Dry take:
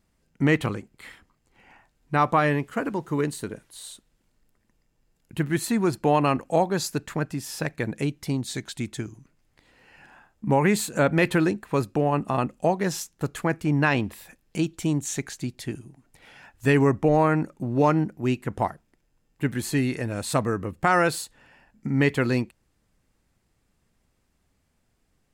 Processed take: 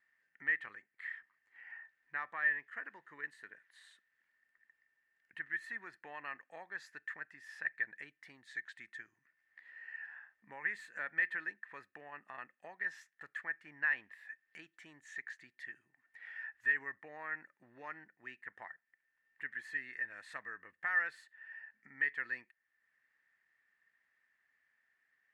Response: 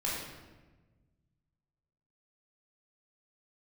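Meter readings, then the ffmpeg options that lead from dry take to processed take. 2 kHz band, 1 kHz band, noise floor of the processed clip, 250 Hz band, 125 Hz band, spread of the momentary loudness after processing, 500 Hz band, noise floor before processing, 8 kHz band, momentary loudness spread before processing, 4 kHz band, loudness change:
-5.0 dB, -23.5 dB, -83 dBFS, -37.5 dB, under -40 dB, 19 LU, -32.5 dB, -71 dBFS, under -30 dB, 14 LU, -24.0 dB, -15.0 dB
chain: -af "acompressor=threshold=-55dB:ratio=1.5,bandpass=f=1.8k:t=q:w=15:csg=0,volume=14.5dB"

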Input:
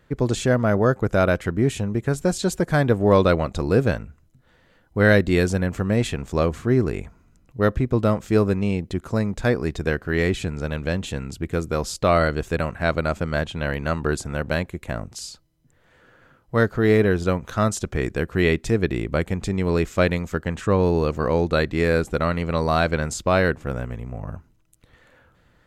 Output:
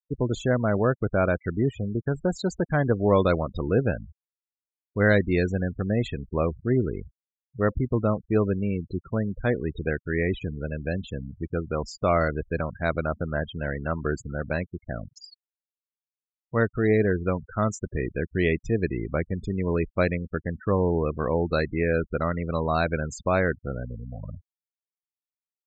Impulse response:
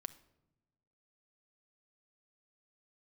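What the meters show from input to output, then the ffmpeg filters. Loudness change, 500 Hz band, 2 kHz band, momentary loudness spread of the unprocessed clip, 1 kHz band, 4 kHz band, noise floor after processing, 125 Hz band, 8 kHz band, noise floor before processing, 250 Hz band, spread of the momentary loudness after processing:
-4.0 dB, -4.0 dB, -4.5 dB, 9 LU, -4.5 dB, -9.5 dB, under -85 dBFS, -4.0 dB, -11.5 dB, -60 dBFS, -4.0 dB, 9 LU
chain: -af "afftfilt=real='re*gte(hypot(re,im),0.0562)':imag='im*gte(hypot(re,im),0.0562)':win_size=1024:overlap=0.75,aresample=16000,aresample=44100,volume=-4dB"

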